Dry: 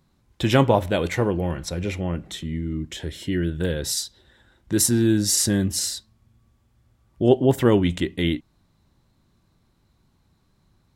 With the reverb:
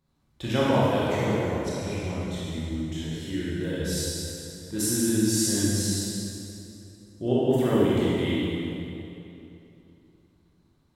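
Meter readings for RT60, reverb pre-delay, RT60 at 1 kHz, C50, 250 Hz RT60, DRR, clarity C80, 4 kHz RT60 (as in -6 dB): 2.9 s, 21 ms, 2.8 s, -5.0 dB, 3.1 s, -8.5 dB, -2.5 dB, 2.4 s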